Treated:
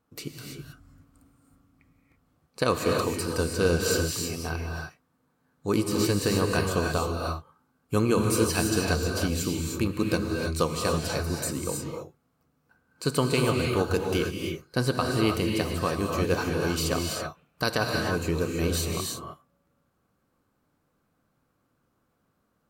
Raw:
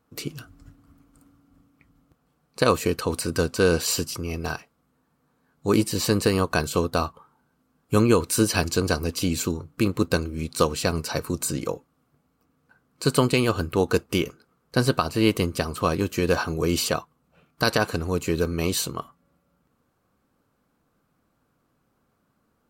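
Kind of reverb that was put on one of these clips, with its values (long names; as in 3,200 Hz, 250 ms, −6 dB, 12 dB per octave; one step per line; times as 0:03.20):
reverb whose tail is shaped and stops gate 350 ms rising, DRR 1 dB
level −5 dB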